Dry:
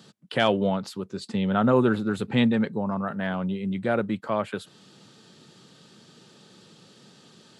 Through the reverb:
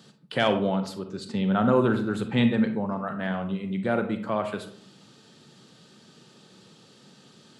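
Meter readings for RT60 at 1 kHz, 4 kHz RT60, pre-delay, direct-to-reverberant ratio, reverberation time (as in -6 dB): 0.55 s, 0.30 s, 34 ms, 7.0 dB, 0.60 s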